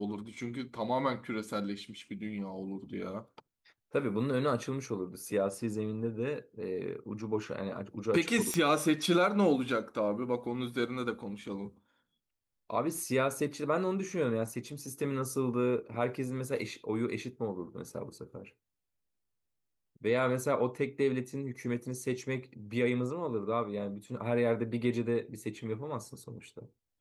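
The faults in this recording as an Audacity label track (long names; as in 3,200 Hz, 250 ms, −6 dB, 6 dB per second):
8.540000	8.540000	click −16 dBFS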